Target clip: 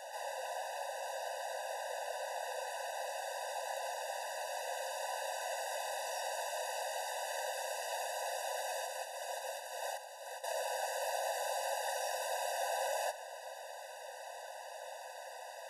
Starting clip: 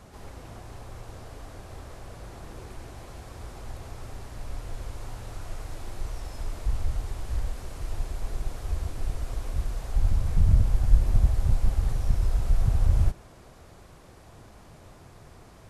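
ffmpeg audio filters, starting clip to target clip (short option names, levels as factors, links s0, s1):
-filter_complex "[0:a]afreqshift=17,asettb=1/sr,asplit=3[s0][s1][s2];[s0]atrim=end=8.854[s3];[s1]atrim=start=8.85:end=10.44,asetpts=PTS-STARTPTS,afade=t=in:d=0.004:c=qsin,afade=t=out:st=1.586:d=0.004:c=qsin,acompressor=threshold=0.0355:ratio=6[s4];[s2]atrim=start=10.436[s5];[s3][s4]acrossfade=d=0.004:c1=hsin:c2=qsin[s6];[s6][s5]acrossfade=d=0.004:c1=qsin:c2=hsin,afftfilt=real='re*eq(mod(floor(b*sr/1024/500),2),1)':imag='im*eq(mod(floor(b*sr/1024/500),2),1)':win_size=1024:overlap=0.75,volume=3.16"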